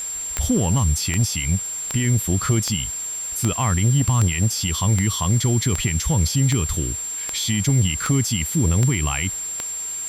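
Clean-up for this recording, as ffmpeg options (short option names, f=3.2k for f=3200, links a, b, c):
-af "adeclick=t=4,bandreject=f=7.4k:w=30,afwtdn=0.01"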